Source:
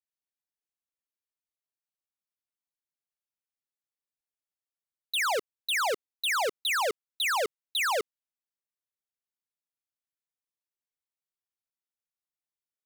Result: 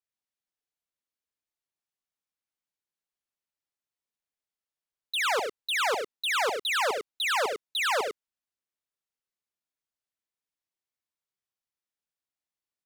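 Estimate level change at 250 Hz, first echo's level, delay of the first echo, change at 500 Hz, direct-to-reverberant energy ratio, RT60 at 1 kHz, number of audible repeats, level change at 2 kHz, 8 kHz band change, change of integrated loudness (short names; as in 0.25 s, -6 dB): +1.5 dB, -10.0 dB, 70 ms, +1.5 dB, none, none, 2, +1.5 dB, -1.5 dB, +1.0 dB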